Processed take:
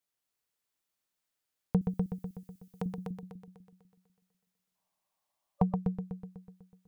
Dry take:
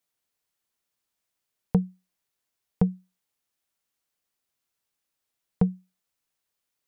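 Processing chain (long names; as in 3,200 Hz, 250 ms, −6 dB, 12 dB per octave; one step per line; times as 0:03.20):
0:01.81–0:02.86: spectral tilt +4 dB per octave
echo machine with several playback heads 124 ms, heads first and second, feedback 48%, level −6 dB
0:04.76–0:05.75: gain on a spectral selection 560–1,200 Hz +12 dB
level −5.5 dB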